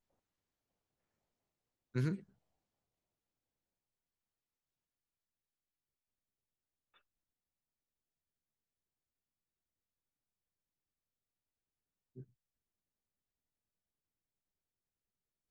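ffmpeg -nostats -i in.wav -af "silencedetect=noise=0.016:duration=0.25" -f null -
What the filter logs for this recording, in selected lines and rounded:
silence_start: 0.00
silence_end: 1.96 | silence_duration: 1.96
silence_start: 2.15
silence_end: 15.51 | silence_duration: 13.36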